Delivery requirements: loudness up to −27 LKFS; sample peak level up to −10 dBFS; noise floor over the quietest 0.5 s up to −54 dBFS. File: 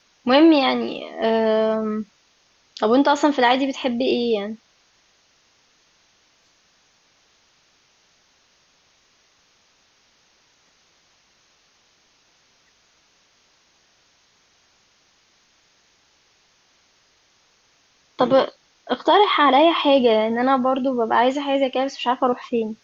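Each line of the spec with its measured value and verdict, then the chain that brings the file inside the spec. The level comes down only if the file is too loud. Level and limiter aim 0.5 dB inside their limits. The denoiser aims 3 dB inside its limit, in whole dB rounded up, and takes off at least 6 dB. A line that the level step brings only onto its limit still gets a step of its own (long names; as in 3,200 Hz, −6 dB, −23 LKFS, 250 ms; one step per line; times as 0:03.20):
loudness −19.0 LKFS: out of spec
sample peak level −5.5 dBFS: out of spec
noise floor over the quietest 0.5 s −61 dBFS: in spec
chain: level −8.5 dB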